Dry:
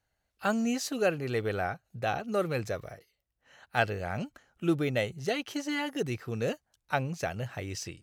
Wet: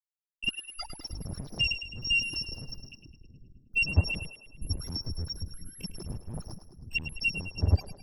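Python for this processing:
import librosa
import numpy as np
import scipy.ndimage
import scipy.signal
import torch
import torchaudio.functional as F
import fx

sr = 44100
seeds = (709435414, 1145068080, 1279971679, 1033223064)

y = fx.bit_reversed(x, sr, seeds[0], block=256)
y = fx.highpass(y, sr, hz=76.0, slope=6)
y = fx.spec_topn(y, sr, count=1)
y = fx.fuzz(y, sr, gain_db=58.0, gate_db=-60.0)
y = fx.spacing_loss(y, sr, db_at_10k=33)
y = fx.echo_split(y, sr, split_hz=370.0, low_ms=723, high_ms=105, feedback_pct=52, wet_db=-10.5)
y = fx.band_squash(y, sr, depth_pct=100, at=(4.69, 5.26))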